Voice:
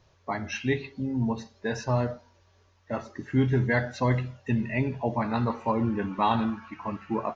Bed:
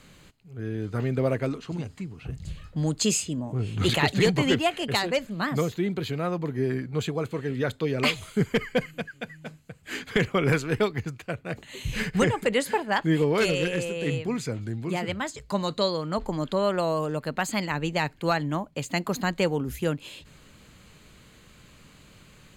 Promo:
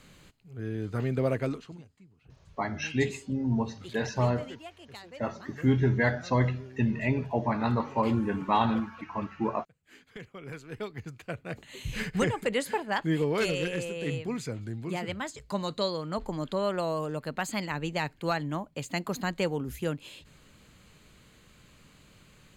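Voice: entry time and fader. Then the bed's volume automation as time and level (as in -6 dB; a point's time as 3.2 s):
2.30 s, -0.5 dB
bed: 1.55 s -2.5 dB
1.89 s -21 dB
10.4 s -21 dB
11.27 s -4.5 dB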